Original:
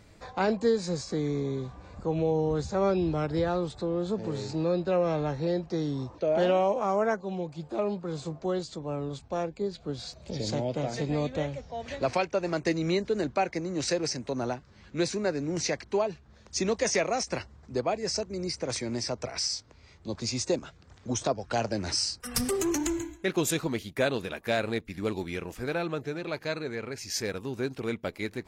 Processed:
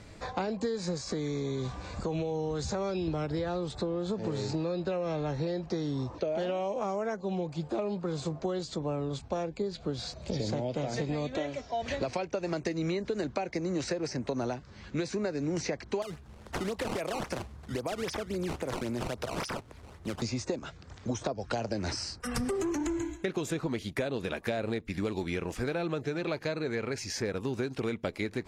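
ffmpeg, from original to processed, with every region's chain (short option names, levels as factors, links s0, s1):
-filter_complex "[0:a]asettb=1/sr,asplit=3[s0][s1][s2];[s0]atrim=end=0.974[s3];[s1]atrim=start=0.97:end=3.08,asetpts=PTS-STARTPTS,afade=t=in:d=0.004:c=qsin,afade=t=out:st=2.106:d=0.004:c=qsin,highshelf=f=2200:g=9.5,acompressor=threshold=0.0251:ratio=3:attack=3.2:release=140:knee=1:detection=peak[s4];[s2]atrim=start=3.076[s5];[s3][s4]acrossfade=d=0.004:c1=hsin:c2=qsin[s6];[s6][s5]acrossfade=d=0.004:c1=qsin:c2=hsin,asettb=1/sr,asplit=3[s7][s8][s9];[s7]atrim=end=11.354[s10];[s8]atrim=start=11.35:end=11.82,asetpts=PTS-STARTPTS,afade=t=in:d=0.004:c=qsin,afade=t=out:st=0.466:d=0.004:c=qsin,highpass=f=270:p=1,aecho=1:1:3:0.56,atrim=end_sample=20727[s11];[s9]atrim=start=11.816[s12];[s10][s11]acrossfade=d=0.004:c1=hsin:c2=qsin[s13];[s13][s12]acrossfade=d=0.004:c1=qsin:c2=hsin,asettb=1/sr,asplit=3[s14][s15][s16];[s14]atrim=end=16.024[s17];[s15]atrim=start=16.02:end=20.22,asetpts=PTS-STARTPTS,afade=t=in:d=0.004:c=qsin,afade=t=out:st=4.196:d=0.004:c=qsin,acompressor=threshold=0.02:ratio=5:attack=3.2:release=140:knee=1:detection=peak,acrusher=samples=15:mix=1:aa=0.000001:lfo=1:lforange=24:lforate=3.7[s18];[s16]atrim=start=20.216[s19];[s17][s18]acrossfade=d=0.004:c1=hsin:c2=qsin[s20];[s20][s19]acrossfade=d=0.004:c1=qsin:c2=hsin,acrossover=split=780|2100[s21][s22][s23];[s21]acompressor=threshold=0.0398:ratio=4[s24];[s22]acompressor=threshold=0.00794:ratio=4[s25];[s23]acompressor=threshold=0.00708:ratio=4[s26];[s24][s25][s26]amix=inputs=3:normalize=0,lowpass=10000,acompressor=threshold=0.02:ratio=6,volume=1.88"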